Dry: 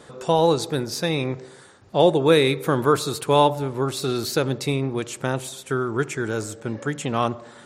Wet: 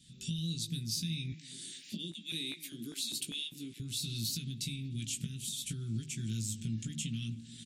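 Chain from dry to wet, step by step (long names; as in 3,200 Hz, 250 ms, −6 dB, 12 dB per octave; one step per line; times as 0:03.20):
camcorder AGC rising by 31 dB per second
Chebyshev band-stop filter 200–3,000 Hz, order 3
mains-hum notches 50/100/150/200/250 Hz
downward compressor 4 to 1, threshold −26 dBFS, peak gain reduction 7 dB
0:01.32–0:03.80: auto-filter high-pass square 2.5 Hz 310–1,900 Hz
double-tracking delay 18 ms −6 dB
echo through a band-pass that steps 243 ms, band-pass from 240 Hz, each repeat 0.7 octaves, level −11 dB
level −8.5 dB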